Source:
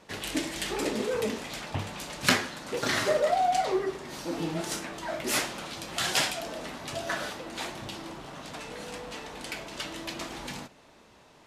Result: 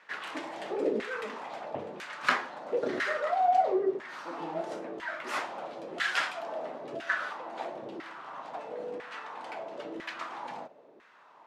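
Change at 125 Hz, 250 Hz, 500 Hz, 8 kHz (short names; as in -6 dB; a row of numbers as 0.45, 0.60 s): -15.0, -5.0, -1.5, -17.5 dB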